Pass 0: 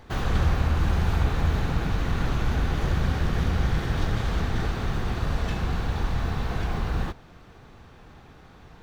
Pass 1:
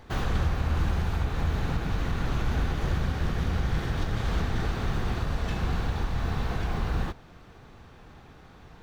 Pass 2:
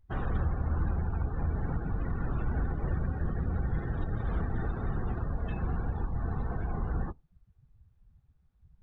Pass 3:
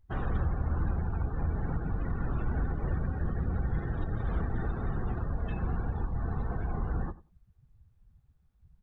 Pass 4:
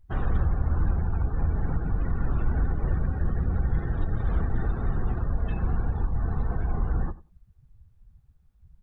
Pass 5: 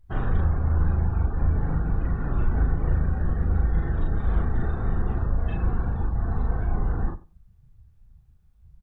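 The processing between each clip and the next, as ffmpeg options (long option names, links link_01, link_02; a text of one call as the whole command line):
ffmpeg -i in.wav -af "alimiter=limit=-16dB:level=0:latency=1:release=288,volume=-1dB" out.wav
ffmpeg -i in.wav -af "afftdn=noise_reduction=31:noise_floor=-35,volume=-3.5dB" out.wav
ffmpeg -i in.wav -filter_complex "[0:a]asplit=2[link_01][link_02];[link_02]adelay=94,lowpass=frequency=1700:poles=1,volume=-17.5dB,asplit=2[link_03][link_04];[link_04]adelay=94,lowpass=frequency=1700:poles=1,volume=0.16[link_05];[link_01][link_03][link_05]amix=inputs=3:normalize=0" out.wav
ffmpeg -i in.wav -af "lowshelf=frequency=63:gain=7,volume=2dB" out.wav
ffmpeg -i in.wav -filter_complex "[0:a]asplit=2[link_01][link_02];[link_02]adelay=38,volume=-2.5dB[link_03];[link_01][link_03]amix=inputs=2:normalize=0" out.wav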